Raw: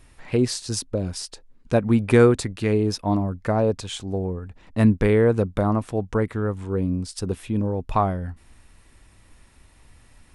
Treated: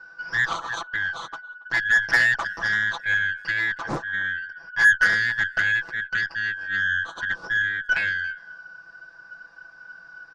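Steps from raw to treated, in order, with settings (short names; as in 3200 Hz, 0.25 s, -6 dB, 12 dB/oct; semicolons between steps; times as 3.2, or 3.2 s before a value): four-band scrambler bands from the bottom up 3142; steep low-pass 5900 Hz 36 dB/oct; resonant high shelf 1600 Hz -10.5 dB, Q 3; comb 6 ms, depth 91%; added harmonics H 8 -27 dB, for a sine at -10.5 dBFS; speakerphone echo 0.28 s, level -24 dB; Doppler distortion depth 0.41 ms; gain +4 dB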